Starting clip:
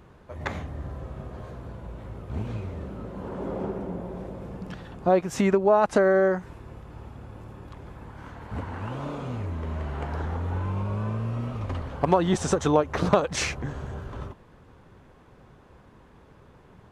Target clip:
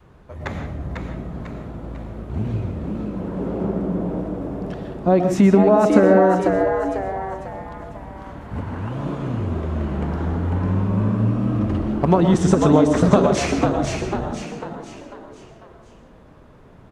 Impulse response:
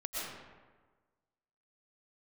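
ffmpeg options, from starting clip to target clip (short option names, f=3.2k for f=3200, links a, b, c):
-filter_complex "[0:a]adynamicequalizer=threshold=0.0141:dfrequency=190:dqfactor=0.75:tfrequency=190:tqfactor=0.75:attack=5:release=100:ratio=0.375:range=3.5:mode=boostabove:tftype=bell,asplit=6[a][b][c][d][e][f];[b]adelay=497,afreqshift=98,volume=-5dB[g];[c]adelay=994,afreqshift=196,volume=-12.3dB[h];[d]adelay=1491,afreqshift=294,volume=-19.7dB[i];[e]adelay=1988,afreqshift=392,volume=-27dB[j];[f]adelay=2485,afreqshift=490,volume=-34.3dB[k];[a][g][h][i][j][k]amix=inputs=6:normalize=0,asplit=2[l][m];[1:a]atrim=start_sample=2205,afade=t=out:st=0.24:d=0.01,atrim=end_sample=11025,lowshelf=f=450:g=9[n];[m][n]afir=irnorm=-1:irlink=0,volume=-5.5dB[o];[l][o]amix=inputs=2:normalize=0,volume=-2dB"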